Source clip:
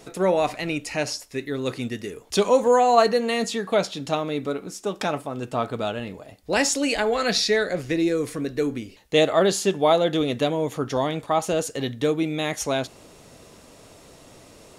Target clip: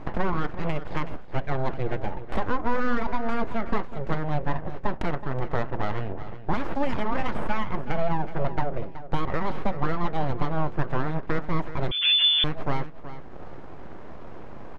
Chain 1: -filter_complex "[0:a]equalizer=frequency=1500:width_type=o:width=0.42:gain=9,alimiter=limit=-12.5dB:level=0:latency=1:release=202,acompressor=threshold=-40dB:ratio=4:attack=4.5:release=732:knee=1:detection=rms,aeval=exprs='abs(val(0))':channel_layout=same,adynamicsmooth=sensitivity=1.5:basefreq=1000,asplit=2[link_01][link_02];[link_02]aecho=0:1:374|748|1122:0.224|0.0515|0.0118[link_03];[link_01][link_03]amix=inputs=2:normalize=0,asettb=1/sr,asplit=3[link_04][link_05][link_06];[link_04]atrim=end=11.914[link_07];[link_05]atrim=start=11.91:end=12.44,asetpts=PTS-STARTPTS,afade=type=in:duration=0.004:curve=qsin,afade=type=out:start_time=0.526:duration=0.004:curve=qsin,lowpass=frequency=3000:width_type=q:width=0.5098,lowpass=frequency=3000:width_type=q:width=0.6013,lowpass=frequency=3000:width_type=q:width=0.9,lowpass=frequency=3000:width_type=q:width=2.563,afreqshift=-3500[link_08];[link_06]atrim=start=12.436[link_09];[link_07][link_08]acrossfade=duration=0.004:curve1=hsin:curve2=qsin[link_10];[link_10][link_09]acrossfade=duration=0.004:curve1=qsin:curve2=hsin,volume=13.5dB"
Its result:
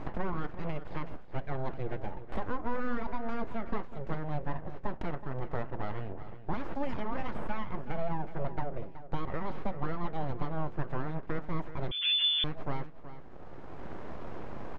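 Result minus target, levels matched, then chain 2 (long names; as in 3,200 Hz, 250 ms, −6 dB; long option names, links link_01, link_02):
downward compressor: peak gain reduction +7.5 dB
-filter_complex "[0:a]equalizer=frequency=1500:width_type=o:width=0.42:gain=9,alimiter=limit=-12.5dB:level=0:latency=1:release=202,acompressor=threshold=-30dB:ratio=4:attack=4.5:release=732:knee=1:detection=rms,aeval=exprs='abs(val(0))':channel_layout=same,adynamicsmooth=sensitivity=1.5:basefreq=1000,asplit=2[link_01][link_02];[link_02]aecho=0:1:374|748|1122:0.224|0.0515|0.0118[link_03];[link_01][link_03]amix=inputs=2:normalize=0,asettb=1/sr,asplit=3[link_04][link_05][link_06];[link_04]atrim=end=11.914[link_07];[link_05]atrim=start=11.91:end=12.44,asetpts=PTS-STARTPTS,afade=type=in:duration=0.004:curve=qsin,afade=type=out:start_time=0.526:duration=0.004:curve=qsin,lowpass=frequency=3000:width_type=q:width=0.5098,lowpass=frequency=3000:width_type=q:width=0.6013,lowpass=frequency=3000:width_type=q:width=0.9,lowpass=frequency=3000:width_type=q:width=2.563,afreqshift=-3500[link_08];[link_06]atrim=start=12.436[link_09];[link_07][link_08]acrossfade=duration=0.004:curve1=hsin:curve2=qsin[link_10];[link_10][link_09]acrossfade=duration=0.004:curve1=qsin:curve2=hsin,volume=13.5dB"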